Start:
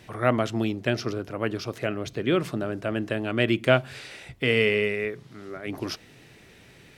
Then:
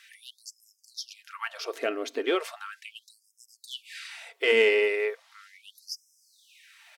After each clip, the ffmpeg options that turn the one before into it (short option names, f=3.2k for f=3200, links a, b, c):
-af "aecho=1:1:4.4:0.38,aeval=exprs='0.794*(cos(1*acos(clip(val(0)/0.794,-1,1)))-cos(1*PI/2))+0.0224*(cos(8*acos(clip(val(0)/0.794,-1,1)))-cos(8*PI/2))':c=same,afftfilt=real='re*gte(b*sr/1024,220*pow(5100/220,0.5+0.5*sin(2*PI*0.37*pts/sr)))':imag='im*gte(b*sr/1024,220*pow(5100/220,0.5+0.5*sin(2*PI*0.37*pts/sr)))':win_size=1024:overlap=0.75"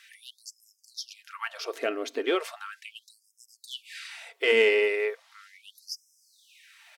-af anull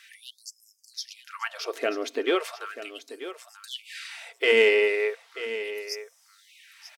-af "aecho=1:1:937:0.224,volume=2dB"